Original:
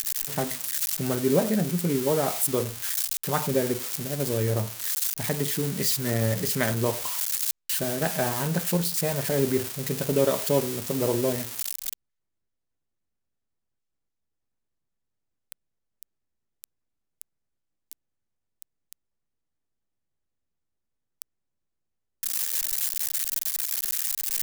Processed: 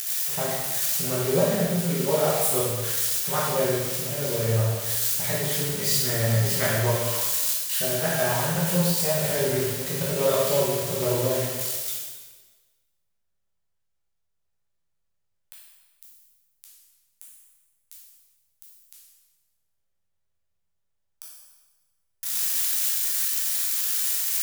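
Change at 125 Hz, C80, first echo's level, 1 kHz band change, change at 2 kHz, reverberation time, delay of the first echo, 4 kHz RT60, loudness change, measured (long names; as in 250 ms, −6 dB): +2.5 dB, 2.5 dB, no echo audible, +2.5 dB, +3.5 dB, 1.3 s, no echo audible, 1.2 s, +2.5 dB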